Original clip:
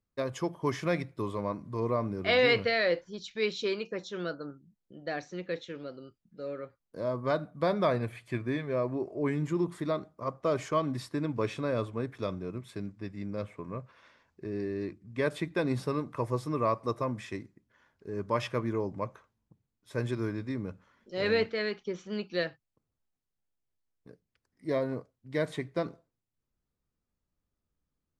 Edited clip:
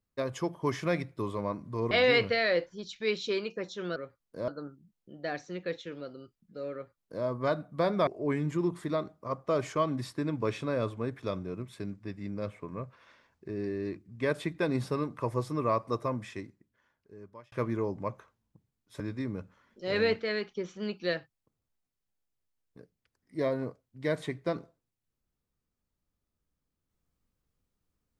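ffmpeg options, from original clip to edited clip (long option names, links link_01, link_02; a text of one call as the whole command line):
ffmpeg -i in.wav -filter_complex "[0:a]asplit=7[link_01][link_02][link_03][link_04][link_05][link_06][link_07];[link_01]atrim=end=1.912[link_08];[link_02]atrim=start=2.258:end=4.312[link_09];[link_03]atrim=start=6.558:end=7.082[link_10];[link_04]atrim=start=4.308:end=7.902[link_11];[link_05]atrim=start=9.028:end=18.48,asetpts=PTS-STARTPTS,afade=type=out:start_time=8.012:duration=1.44[link_12];[link_06]atrim=start=18.48:end=19.962,asetpts=PTS-STARTPTS,afade=type=in:duration=0.004:curve=hsin[link_13];[link_07]atrim=start=20.298[link_14];[link_08][link_09]acrossfade=duration=0.004:curve1=hsin:curve2=hsin[link_15];[link_15][link_10]acrossfade=duration=0.004:curve1=hsin:curve2=hsin[link_16];[link_16][link_11]acrossfade=duration=0.004:curve1=hsin:curve2=hsin[link_17];[link_12][link_13]concat=n=2:v=0:a=1[link_18];[link_17][link_18]acrossfade=duration=0.004:curve1=hsin:curve2=hsin[link_19];[link_19][link_14]acrossfade=duration=0.004:curve1=hsin:curve2=hsin" out.wav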